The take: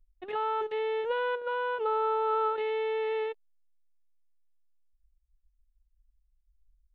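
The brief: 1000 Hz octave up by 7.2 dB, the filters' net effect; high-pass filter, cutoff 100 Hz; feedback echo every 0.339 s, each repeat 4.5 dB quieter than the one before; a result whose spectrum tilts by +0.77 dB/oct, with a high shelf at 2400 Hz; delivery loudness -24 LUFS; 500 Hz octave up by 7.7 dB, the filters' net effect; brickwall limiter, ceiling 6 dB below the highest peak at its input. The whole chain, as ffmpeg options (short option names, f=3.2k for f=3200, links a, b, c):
-af "highpass=100,equalizer=f=500:t=o:g=7.5,equalizer=f=1k:t=o:g=8,highshelf=f=2.4k:g=-7,alimiter=limit=-18.5dB:level=0:latency=1,aecho=1:1:339|678|1017|1356|1695|2034|2373|2712|3051:0.596|0.357|0.214|0.129|0.0772|0.0463|0.0278|0.0167|0.01,volume=-0.5dB"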